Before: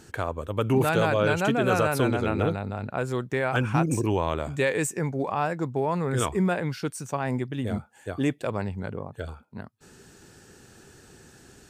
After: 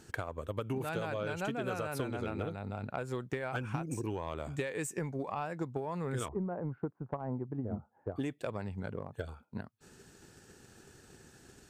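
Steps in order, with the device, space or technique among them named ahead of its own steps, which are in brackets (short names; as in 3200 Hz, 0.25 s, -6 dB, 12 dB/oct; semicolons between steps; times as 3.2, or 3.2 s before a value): 6.28–8.16 LPF 1100 Hz 24 dB/oct; drum-bus smash (transient shaper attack +8 dB, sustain 0 dB; compressor 6:1, threshold -25 dBFS, peak gain reduction 11.5 dB; soft clip -16.5 dBFS, distortion -22 dB); gain -6.5 dB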